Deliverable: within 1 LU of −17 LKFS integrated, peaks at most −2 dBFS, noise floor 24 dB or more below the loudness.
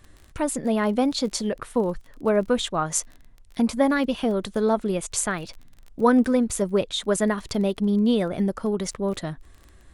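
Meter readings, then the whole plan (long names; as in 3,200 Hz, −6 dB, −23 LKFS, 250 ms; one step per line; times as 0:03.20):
crackle rate 22 per second; integrated loudness −24.0 LKFS; sample peak −5.5 dBFS; target loudness −17.0 LKFS
→ click removal
level +7 dB
brickwall limiter −2 dBFS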